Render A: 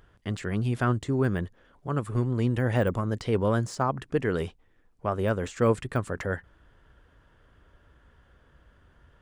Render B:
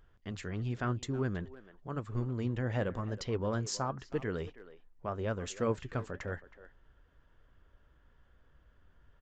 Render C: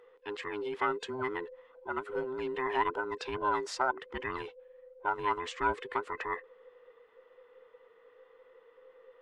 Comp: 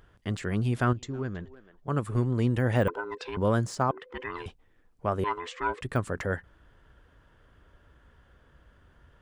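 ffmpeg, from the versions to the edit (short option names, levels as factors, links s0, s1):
-filter_complex "[2:a]asplit=3[s0][s1][s2];[0:a]asplit=5[s3][s4][s5][s6][s7];[s3]atrim=end=0.932[s8];[1:a]atrim=start=0.928:end=1.882[s9];[s4]atrim=start=1.878:end=2.882[s10];[s0]atrim=start=2.878:end=3.372[s11];[s5]atrim=start=3.368:end=3.912[s12];[s1]atrim=start=3.908:end=4.462[s13];[s6]atrim=start=4.458:end=5.242[s14];[s2]atrim=start=5.238:end=5.812[s15];[s7]atrim=start=5.808[s16];[s8][s9]acrossfade=d=0.004:c1=hsin:c2=hsin[s17];[s17][s10]acrossfade=d=0.004:c1=hsin:c2=hsin[s18];[s18][s11]acrossfade=d=0.004:c1=hsin:c2=hsin[s19];[s19][s12]acrossfade=d=0.004:c1=hsin:c2=hsin[s20];[s20][s13]acrossfade=d=0.004:c1=hsin:c2=hsin[s21];[s21][s14]acrossfade=d=0.004:c1=hsin:c2=hsin[s22];[s22][s15]acrossfade=d=0.004:c1=hsin:c2=hsin[s23];[s23][s16]acrossfade=d=0.004:c1=hsin:c2=hsin"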